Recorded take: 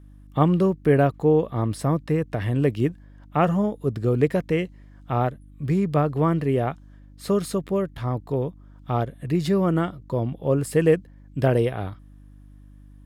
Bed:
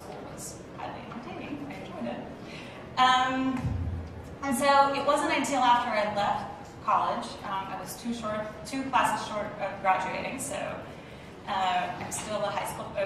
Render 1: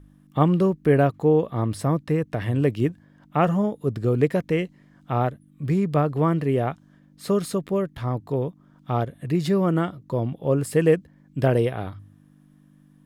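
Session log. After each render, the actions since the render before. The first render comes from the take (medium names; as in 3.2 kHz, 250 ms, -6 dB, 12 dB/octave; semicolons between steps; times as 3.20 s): de-hum 50 Hz, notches 2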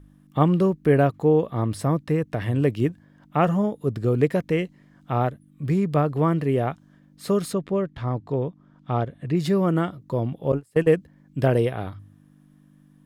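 7.53–9.37 s: distance through air 84 m; 10.52–10.94 s: gate -21 dBFS, range -27 dB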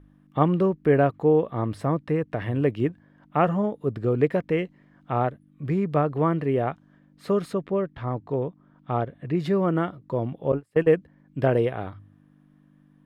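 tone controls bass -4 dB, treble -14 dB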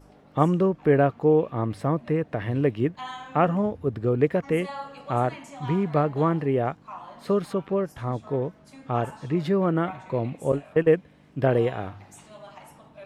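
add bed -15 dB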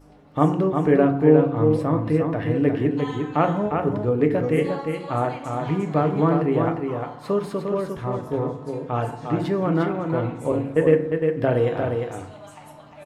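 on a send: delay 353 ms -5 dB; on the sum: FDN reverb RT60 0.7 s, low-frequency decay 1.25×, high-frequency decay 0.45×, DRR 5.5 dB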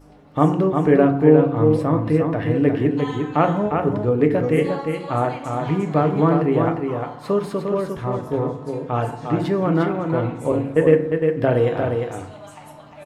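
trim +2.5 dB; peak limiter -2 dBFS, peak gain reduction 1 dB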